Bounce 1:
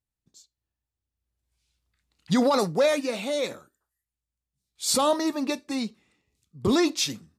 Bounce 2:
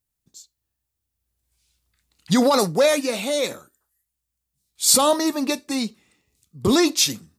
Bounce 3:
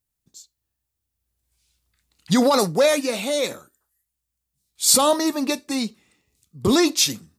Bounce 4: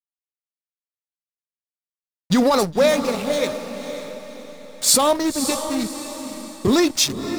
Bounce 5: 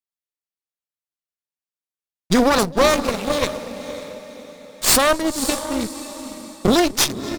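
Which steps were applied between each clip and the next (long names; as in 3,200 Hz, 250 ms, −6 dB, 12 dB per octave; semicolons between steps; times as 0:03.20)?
high-shelf EQ 7,000 Hz +11 dB; level +4 dB
no processing that can be heard
slack as between gear wheels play −22.5 dBFS; feedback delay with all-pass diffusion 550 ms, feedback 43%, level −9 dB; level +1 dB
slap from a distant wall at 43 metres, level −20 dB; harmonic generator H 6 −11 dB, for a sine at −1 dBFS; level −1.5 dB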